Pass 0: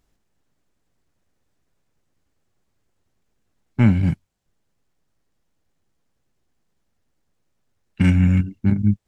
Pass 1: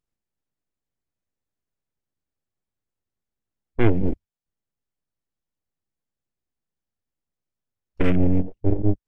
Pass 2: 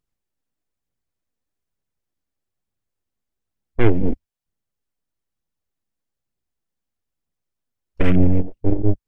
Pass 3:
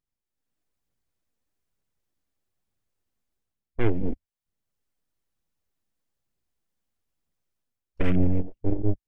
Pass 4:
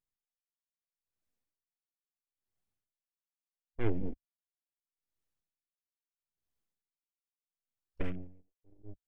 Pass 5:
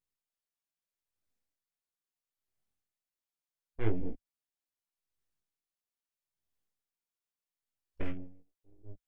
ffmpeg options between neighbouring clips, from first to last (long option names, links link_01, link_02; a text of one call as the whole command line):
ffmpeg -i in.wav -af "aeval=exprs='abs(val(0))':channel_layout=same,afwtdn=0.0398" out.wav
ffmpeg -i in.wav -af "aphaser=in_gain=1:out_gain=1:delay=4.5:decay=0.3:speed=1.1:type=triangular,volume=2dB" out.wav
ffmpeg -i in.wav -af "dynaudnorm=framelen=280:gausssize=3:maxgain=10dB,volume=-8.5dB" out.wav
ffmpeg -i in.wav -af "aeval=exprs='val(0)*pow(10,-38*(0.5-0.5*cos(2*PI*0.76*n/s))/20)':channel_layout=same,volume=-6.5dB" out.wav
ffmpeg -i in.wav -af "flanger=delay=17.5:depth=7.1:speed=0.23,volume=2.5dB" out.wav